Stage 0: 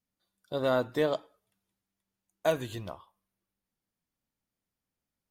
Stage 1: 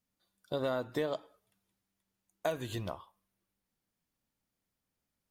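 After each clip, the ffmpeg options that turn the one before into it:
ffmpeg -i in.wav -af "acompressor=threshold=-33dB:ratio=4,volume=2dB" out.wav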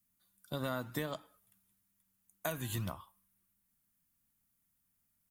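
ffmpeg -i in.wav -filter_complex "[0:a]firequalizer=gain_entry='entry(200,0);entry(410,-12);entry(1200,-2);entry(4600,-4);entry(8300,5);entry(12000,10)':delay=0.05:min_phase=1,acrossover=split=110[link_01][link_02];[link_01]acrusher=samples=33:mix=1:aa=0.000001:lfo=1:lforange=33:lforate=1.6[link_03];[link_03][link_02]amix=inputs=2:normalize=0,volume=2.5dB" out.wav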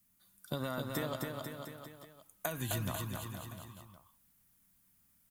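ffmpeg -i in.wav -filter_complex "[0:a]acompressor=threshold=-40dB:ratio=6,asplit=2[link_01][link_02];[link_02]aecho=0:1:260|494|704.6|894.1|1065:0.631|0.398|0.251|0.158|0.1[link_03];[link_01][link_03]amix=inputs=2:normalize=0,volume=6.5dB" out.wav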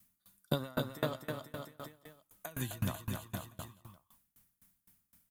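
ffmpeg -i in.wav -af "aeval=exprs='val(0)*pow(10,-27*if(lt(mod(3.9*n/s,1),2*abs(3.9)/1000),1-mod(3.9*n/s,1)/(2*abs(3.9)/1000),(mod(3.9*n/s,1)-2*abs(3.9)/1000)/(1-2*abs(3.9)/1000))/20)':channel_layout=same,volume=8dB" out.wav

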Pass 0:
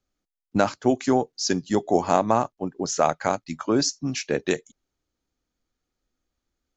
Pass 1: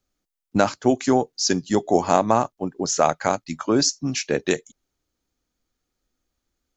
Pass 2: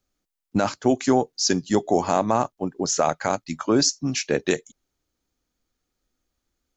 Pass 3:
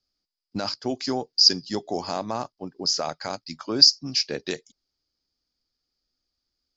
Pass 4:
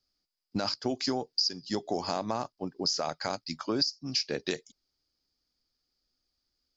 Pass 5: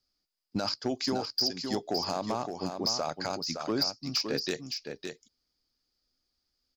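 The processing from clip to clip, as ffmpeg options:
ffmpeg -i in.wav -af "highshelf=frequency=6200:gain=5,volume=2dB" out.wav
ffmpeg -i in.wav -af "alimiter=limit=-8dB:level=0:latency=1:release=23" out.wav
ffmpeg -i in.wav -af "lowpass=frequency=4900:width_type=q:width=14,volume=-8.5dB" out.wav
ffmpeg -i in.wav -af "acompressor=threshold=-25dB:ratio=20" out.wav
ffmpeg -i in.wav -filter_complex "[0:a]asoftclip=type=hard:threshold=-21.5dB,asplit=2[link_01][link_02];[link_02]aecho=0:1:564:0.473[link_03];[link_01][link_03]amix=inputs=2:normalize=0" out.wav

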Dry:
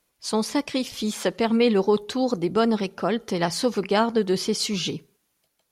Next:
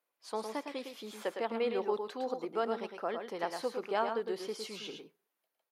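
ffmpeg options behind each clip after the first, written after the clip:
ffmpeg -i in.wav -filter_complex "[0:a]highpass=510,equalizer=frequency=6700:width_type=o:width=2.4:gain=-13.5,asplit=2[link_01][link_02];[link_02]aecho=0:1:109|127:0.473|0.126[link_03];[link_01][link_03]amix=inputs=2:normalize=0,volume=-7.5dB" out.wav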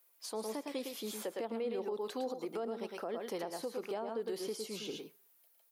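ffmpeg -i in.wav -filter_complex "[0:a]aemphasis=mode=production:type=75kf,acrossover=split=670[link_01][link_02];[link_02]acompressor=threshold=-47dB:ratio=8[link_03];[link_01][link_03]amix=inputs=2:normalize=0,alimiter=level_in=9.5dB:limit=-24dB:level=0:latency=1:release=169,volume=-9.5dB,volume=4dB" out.wav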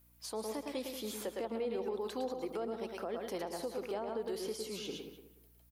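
ffmpeg -i in.wav -filter_complex "[0:a]aeval=exprs='val(0)+0.000501*(sin(2*PI*60*n/s)+sin(2*PI*2*60*n/s)/2+sin(2*PI*3*60*n/s)/3+sin(2*PI*4*60*n/s)/4+sin(2*PI*5*60*n/s)/5)':channel_layout=same,asplit=2[link_01][link_02];[link_02]adelay=185,lowpass=frequency=2100:poles=1,volume=-9.5dB,asplit=2[link_03][link_04];[link_04]adelay=185,lowpass=frequency=2100:poles=1,volume=0.27,asplit=2[link_05][link_06];[link_06]adelay=185,lowpass=frequency=2100:poles=1,volume=0.27[link_07];[link_03][link_05][link_07]amix=inputs=3:normalize=0[link_08];[link_01][link_08]amix=inputs=2:normalize=0" out.wav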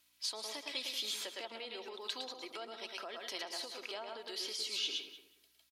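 ffmpeg -i in.wav -af "bandpass=frequency=3700:width_type=q:width=1.4:csg=0,aecho=1:1:3.1:0.38,volume=11dB" out.wav

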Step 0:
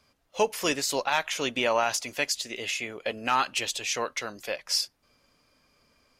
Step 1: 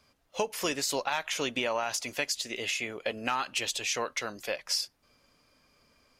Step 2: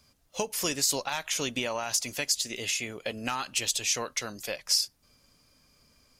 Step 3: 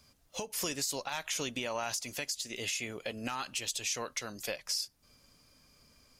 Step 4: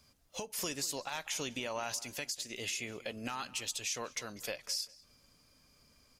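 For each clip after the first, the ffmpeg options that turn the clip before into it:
ffmpeg -i in.wav -af "acompressor=threshold=-26dB:ratio=6" out.wav
ffmpeg -i in.wav -af "bass=frequency=250:gain=8,treble=frequency=4000:gain=10,volume=-2.5dB" out.wav
ffmpeg -i in.wav -af "alimiter=limit=-23dB:level=0:latency=1:release=361" out.wav
ffmpeg -i in.wav -filter_complex "[0:a]asplit=2[link_01][link_02];[link_02]adelay=196,lowpass=frequency=3800:poles=1,volume=-18.5dB,asplit=2[link_03][link_04];[link_04]adelay=196,lowpass=frequency=3800:poles=1,volume=0.27[link_05];[link_01][link_03][link_05]amix=inputs=3:normalize=0,volume=-2.5dB" out.wav

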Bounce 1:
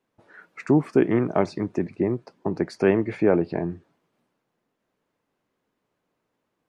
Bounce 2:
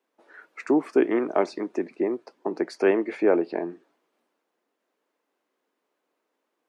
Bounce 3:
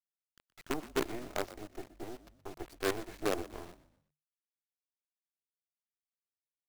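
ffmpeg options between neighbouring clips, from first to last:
ffmpeg -i in.wav -af "highpass=frequency=280:width=0.5412,highpass=frequency=280:width=1.3066" out.wav
ffmpeg -i in.wav -filter_complex "[0:a]flanger=delay=3.3:depth=7:regen=-73:speed=0.47:shape=triangular,acrusher=bits=4:dc=4:mix=0:aa=0.000001,asplit=4[link_01][link_02][link_03][link_04];[link_02]adelay=122,afreqshift=-50,volume=-16dB[link_05];[link_03]adelay=244,afreqshift=-100,volume=-24.2dB[link_06];[link_04]adelay=366,afreqshift=-150,volume=-32.4dB[link_07];[link_01][link_05][link_06][link_07]amix=inputs=4:normalize=0,volume=-9dB" out.wav

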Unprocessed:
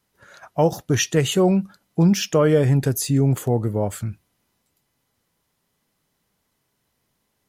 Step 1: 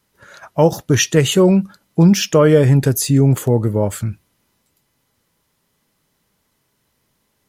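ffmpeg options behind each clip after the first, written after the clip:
ffmpeg -i in.wav -af "bandreject=frequency=730:width=12,volume=5.5dB" out.wav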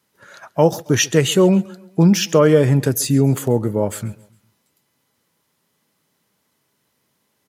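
ffmpeg -i in.wav -af "highpass=130,aecho=1:1:136|272|408:0.0794|0.0357|0.0161,volume=-1dB" out.wav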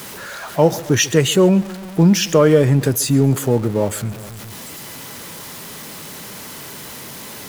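ffmpeg -i in.wav -af "aeval=exprs='val(0)+0.5*0.0398*sgn(val(0))':channel_layout=same" out.wav

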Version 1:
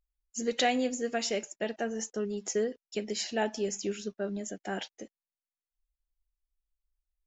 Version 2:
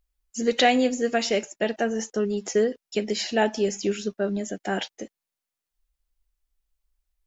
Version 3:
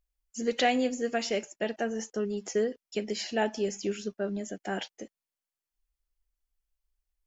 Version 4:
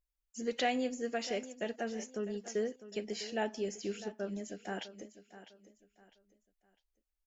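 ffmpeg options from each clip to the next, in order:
ffmpeg -i in.wav -filter_complex "[0:a]acrossover=split=5600[link_01][link_02];[link_02]acompressor=threshold=-49dB:ratio=4:attack=1:release=60[link_03];[link_01][link_03]amix=inputs=2:normalize=0,volume=8dB" out.wav
ffmpeg -i in.wav -af "bandreject=frequency=3800:width=15,volume=-6dB" out.wav
ffmpeg -i in.wav -af "aecho=1:1:653|1306|1959:0.188|0.0603|0.0193,volume=-6.5dB" out.wav

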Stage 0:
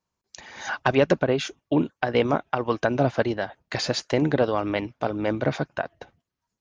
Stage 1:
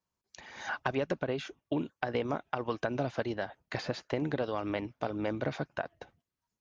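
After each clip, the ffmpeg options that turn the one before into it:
ffmpeg -i in.wav -filter_complex "[0:a]acrossover=split=2200|4500[link_01][link_02][link_03];[link_01]acompressor=threshold=-23dB:ratio=4[link_04];[link_02]acompressor=threshold=-42dB:ratio=4[link_05];[link_03]acompressor=threshold=-52dB:ratio=4[link_06];[link_04][link_05][link_06]amix=inputs=3:normalize=0,volume=-5.5dB" out.wav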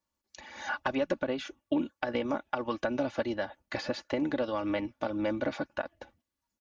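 ffmpeg -i in.wav -af "aecho=1:1:3.5:0.68" out.wav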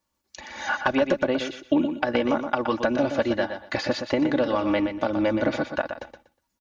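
ffmpeg -i in.wav -af "aecho=1:1:121|242|363:0.398|0.0796|0.0159,volume=7.5dB" out.wav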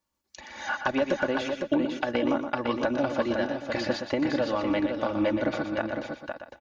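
ffmpeg -i in.wav -af "aecho=1:1:507:0.531,volume=-4dB" out.wav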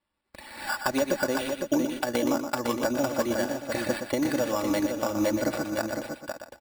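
ffmpeg -i in.wav -af "acrusher=samples=7:mix=1:aa=0.000001" out.wav

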